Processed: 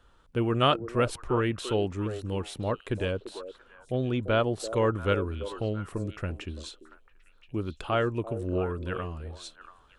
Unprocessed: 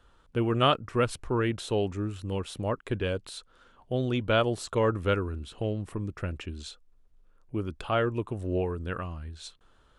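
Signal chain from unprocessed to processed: 3.11–4.6 high shelf 3300 Hz -9 dB; delay with a stepping band-pass 0.341 s, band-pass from 440 Hz, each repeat 1.4 oct, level -8.5 dB

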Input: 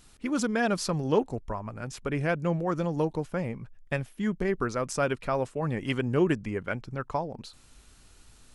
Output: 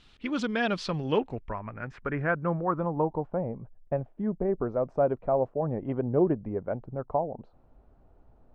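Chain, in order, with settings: low-pass sweep 3400 Hz -> 690 Hz, 0.87–3.52; gain -2 dB

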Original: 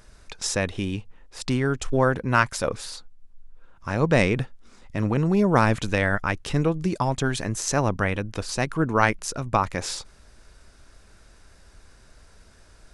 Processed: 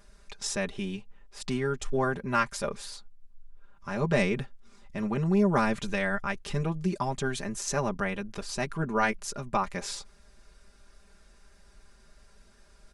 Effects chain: comb 5 ms, depth 85%; gain -8 dB

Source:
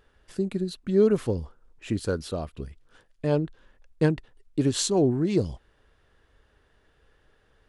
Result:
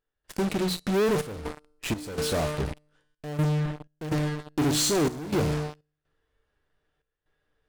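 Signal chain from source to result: notches 60/120/180/240 Hz; resonator 150 Hz, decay 0.97 s, harmonics all, mix 80%; in parallel at -11.5 dB: fuzz box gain 56 dB, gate -53 dBFS; on the sum: step gate ".xxxx.xx" 62 bpm -12 dB

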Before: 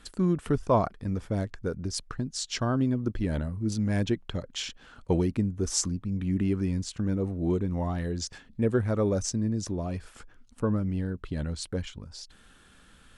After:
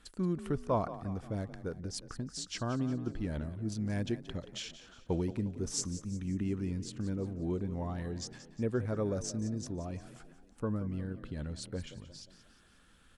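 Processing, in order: frequency-shifting echo 0.178 s, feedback 48%, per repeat +33 Hz, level -14 dB; gain -7.5 dB

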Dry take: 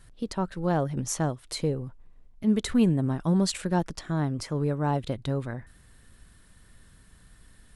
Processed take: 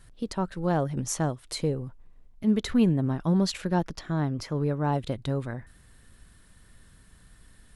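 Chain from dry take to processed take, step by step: 2.5–4.92 bell 8600 Hz -10.5 dB 0.47 oct

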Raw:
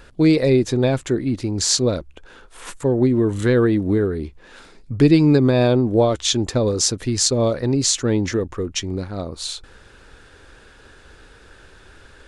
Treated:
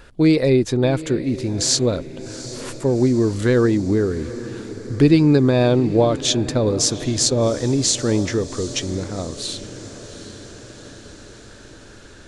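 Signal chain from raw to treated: diffused feedback echo 0.778 s, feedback 63%, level -15 dB

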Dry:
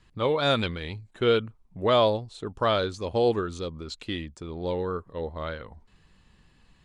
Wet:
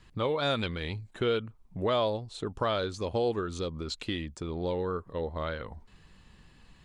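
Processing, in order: compressor 2:1, threshold -35 dBFS, peak gain reduction 10 dB; gain +3 dB

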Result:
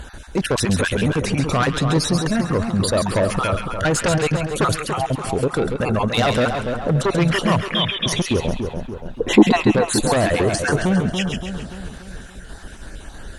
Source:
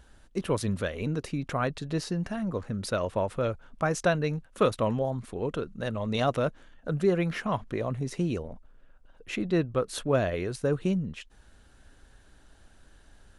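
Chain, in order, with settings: random spectral dropouts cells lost 37%; in parallel at -4 dB: soft clip -25 dBFS, distortion -11 dB; on the sum: added harmonics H 5 -6 dB, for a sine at -11.5 dBFS; 7.62–8.06 inverted band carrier 3600 Hz; limiter -19 dBFS, peak gain reduction 10.5 dB; 9.17–9.56 spectral gain 210–1100 Hz +12 dB; on a send: split-band echo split 1400 Hz, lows 0.287 s, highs 0.135 s, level -6 dB; on the sum: gain +5.5 dB

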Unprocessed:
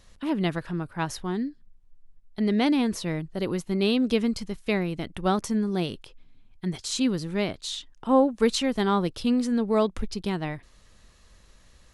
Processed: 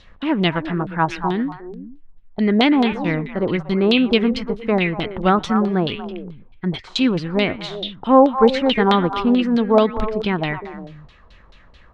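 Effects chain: delay with a stepping band-pass 0.119 s, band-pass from 2800 Hz, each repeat -1.4 oct, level -3 dB; LFO low-pass saw down 4.6 Hz 710–4000 Hz; gain +6.5 dB

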